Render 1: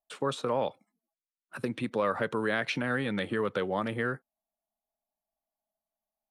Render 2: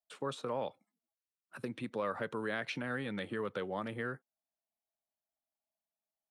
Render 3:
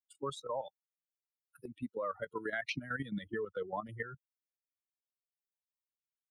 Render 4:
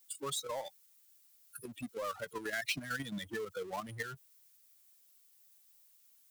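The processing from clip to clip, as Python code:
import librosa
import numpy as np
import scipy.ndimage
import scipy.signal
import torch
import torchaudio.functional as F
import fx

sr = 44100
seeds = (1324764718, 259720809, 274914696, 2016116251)

y1 = scipy.signal.sosfilt(scipy.signal.butter(2, 48.0, 'highpass', fs=sr, output='sos'), x)
y1 = y1 * librosa.db_to_amplitude(-7.5)
y2 = fx.bin_expand(y1, sr, power=3.0)
y2 = fx.level_steps(y2, sr, step_db=11)
y2 = y2 * librosa.db_to_amplitude(8.5)
y3 = fx.power_curve(y2, sr, exponent=0.7)
y3 = F.preemphasis(torch.from_numpy(y3), 0.8).numpy()
y3 = y3 * librosa.db_to_amplitude(8.5)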